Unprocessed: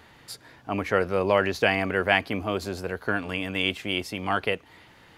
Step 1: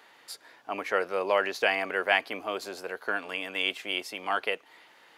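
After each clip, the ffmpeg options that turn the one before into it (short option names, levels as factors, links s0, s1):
-af "highpass=460,volume=0.794"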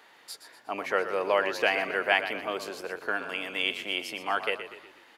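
-filter_complex "[0:a]asplit=6[s0][s1][s2][s3][s4][s5];[s1]adelay=121,afreqshift=-34,volume=0.282[s6];[s2]adelay=242,afreqshift=-68,volume=0.132[s7];[s3]adelay=363,afreqshift=-102,volume=0.0624[s8];[s4]adelay=484,afreqshift=-136,volume=0.0292[s9];[s5]adelay=605,afreqshift=-170,volume=0.0138[s10];[s0][s6][s7][s8][s9][s10]amix=inputs=6:normalize=0"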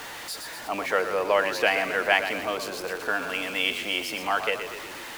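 -af "aeval=exprs='val(0)+0.5*0.0158*sgn(val(0))':c=same,bandreject=f=390:w=12,volume=1.26"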